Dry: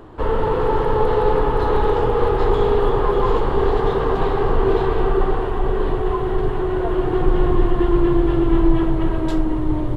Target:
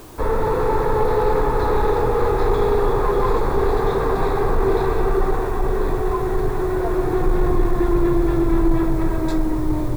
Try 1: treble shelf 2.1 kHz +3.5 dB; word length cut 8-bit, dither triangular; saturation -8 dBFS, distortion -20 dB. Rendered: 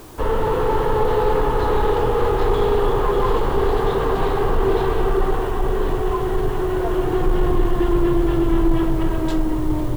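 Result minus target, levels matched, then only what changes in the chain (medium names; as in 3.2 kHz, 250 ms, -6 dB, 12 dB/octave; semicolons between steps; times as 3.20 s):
4 kHz band +4.5 dB
add first: Butterworth band-stop 3 kHz, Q 3.4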